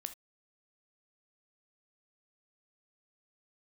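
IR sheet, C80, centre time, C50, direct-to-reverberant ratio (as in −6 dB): 25.5 dB, 6 ms, 13.5 dB, 9.0 dB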